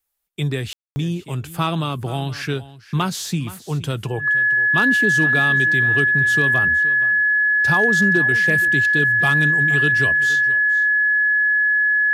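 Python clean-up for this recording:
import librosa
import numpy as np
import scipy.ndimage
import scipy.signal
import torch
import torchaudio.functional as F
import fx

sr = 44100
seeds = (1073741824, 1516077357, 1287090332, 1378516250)

y = fx.fix_declip(x, sr, threshold_db=-8.5)
y = fx.notch(y, sr, hz=1700.0, q=30.0)
y = fx.fix_ambience(y, sr, seeds[0], print_start_s=2.43, print_end_s=2.93, start_s=0.73, end_s=0.96)
y = fx.fix_echo_inverse(y, sr, delay_ms=471, level_db=-17.0)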